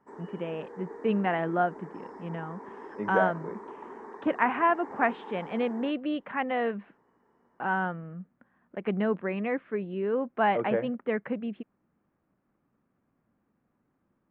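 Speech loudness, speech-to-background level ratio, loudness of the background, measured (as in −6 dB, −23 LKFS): −30.0 LKFS, 14.5 dB, −44.5 LKFS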